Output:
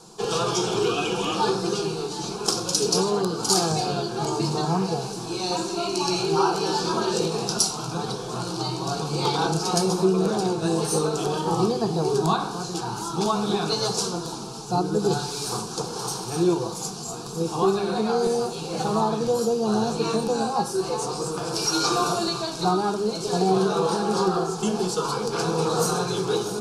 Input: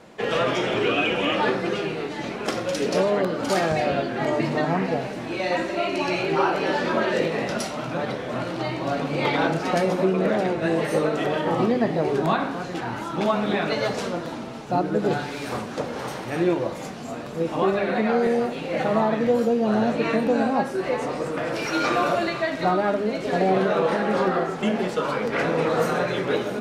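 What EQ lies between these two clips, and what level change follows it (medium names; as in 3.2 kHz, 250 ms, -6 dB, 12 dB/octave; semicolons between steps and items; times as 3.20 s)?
bass shelf 68 Hz +7.5 dB; high-order bell 6.9 kHz +13 dB; static phaser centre 390 Hz, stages 8; +1.5 dB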